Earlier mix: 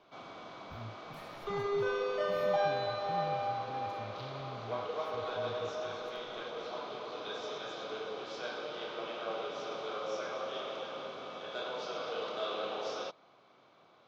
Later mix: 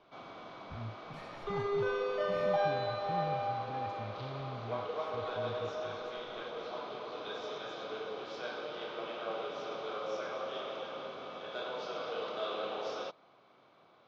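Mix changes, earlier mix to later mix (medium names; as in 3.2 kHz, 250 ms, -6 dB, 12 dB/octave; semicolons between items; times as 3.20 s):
speech +3.5 dB; master: add distance through air 79 m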